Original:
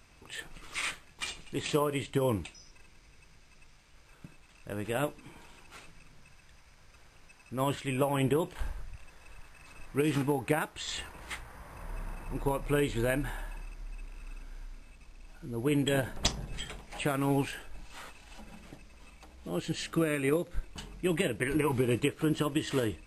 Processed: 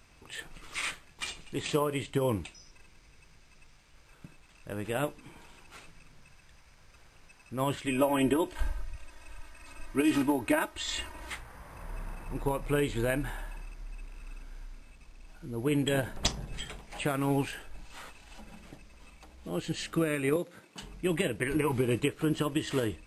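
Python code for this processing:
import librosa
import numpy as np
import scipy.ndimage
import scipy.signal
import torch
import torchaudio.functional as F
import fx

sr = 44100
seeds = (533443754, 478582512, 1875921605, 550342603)

y = fx.comb(x, sr, ms=3.2, depth=0.9, at=(7.86, 11.3))
y = fx.highpass(y, sr, hz=160.0, slope=24, at=(20.36, 20.82))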